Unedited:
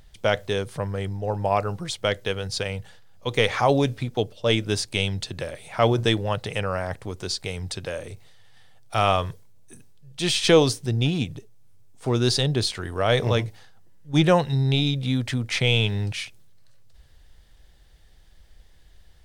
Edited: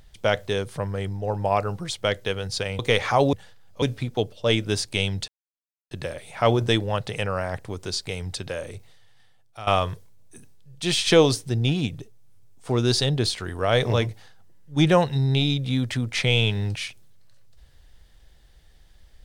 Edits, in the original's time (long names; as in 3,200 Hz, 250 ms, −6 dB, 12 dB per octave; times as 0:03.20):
0:02.79–0:03.28: move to 0:03.82
0:05.28: splice in silence 0.63 s
0:08.12–0:09.04: fade out, to −17.5 dB